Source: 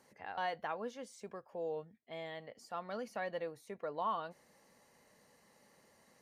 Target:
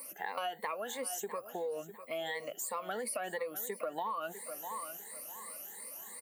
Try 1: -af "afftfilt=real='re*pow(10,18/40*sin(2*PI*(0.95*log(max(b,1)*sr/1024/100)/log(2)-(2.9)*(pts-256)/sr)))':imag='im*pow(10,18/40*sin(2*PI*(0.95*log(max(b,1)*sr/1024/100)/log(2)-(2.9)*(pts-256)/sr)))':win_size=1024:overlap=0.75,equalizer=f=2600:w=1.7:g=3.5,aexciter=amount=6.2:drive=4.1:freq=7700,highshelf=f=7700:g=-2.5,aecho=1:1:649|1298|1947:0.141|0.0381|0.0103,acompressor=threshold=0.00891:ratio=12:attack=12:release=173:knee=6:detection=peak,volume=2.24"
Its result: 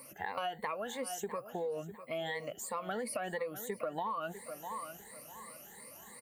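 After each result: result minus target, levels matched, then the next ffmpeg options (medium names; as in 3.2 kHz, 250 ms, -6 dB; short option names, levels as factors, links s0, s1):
250 Hz band +4.5 dB; 8 kHz band -3.5 dB
-af "afftfilt=real='re*pow(10,18/40*sin(2*PI*(0.95*log(max(b,1)*sr/1024/100)/log(2)-(2.9)*(pts-256)/sr)))':imag='im*pow(10,18/40*sin(2*PI*(0.95*log(max(b,1)*sr/1024/100)/log(2)-(2.9)*(pts-256)/sr)))':win_size=1024:overlap=0.75,equalizer=f=2600:w=1.7:g=3.5,aexciter=amount=6.2:drive=4.1:freq=7700,highshelf=f=7700:g=-2.5,aecho=1:1:649|1298|1947:0.141|0.0381|0.0103,acompressor=threshold=0.00891:ratio=12:attack=12:release=173:knee=6:detection=peak,highpass=270,volume=2.24"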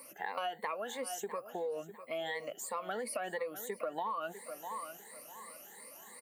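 8 kHz band -3.5 dB
-af "afftfilt=real='re*pow(10,18/40*sin(2*PI*(0.95*log(max(b,1)*sr/1024/100)/log(2)-(2.9)*(pts-256)/sr)))':imag='im*pow(10,18/40*sin(2*PI*(0.95*log(max(b,1)*sr/1024/100)/log(2)-(2.9)*(pts-256)/sr)))':win_size=1024:overlap=0.75,equalizer=f=2600:w=1.7:g=3.5,aexciter=amount=6.2:drive=4.1:freq=7700,highshelf=f=7700:g=8,aecho=1:1:649|1298|1947:0.141|0.0381|0.0103,acompressor=threshold=0.00891:ratio=12:attack=12:release=173:knee=6:detection=peak,highpass=270,volume=2.24"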